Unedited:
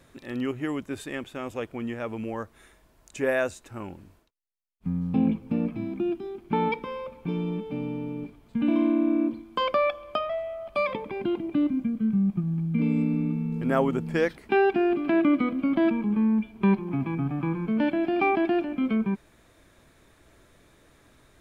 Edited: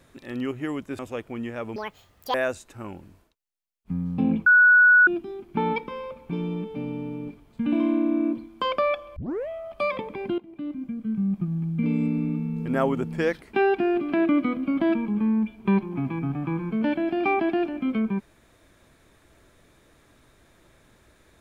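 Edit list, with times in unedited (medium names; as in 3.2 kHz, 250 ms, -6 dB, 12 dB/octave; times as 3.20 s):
0.99–1.43 s: delete
2.20–3.30 s: speed 189%
5.42–6.03 s: bleep 1.47 kHz -11.5 dBFS
10.12 s: tape start 0.32 s
11.34–12.42 s: fade in, from -17.5 dB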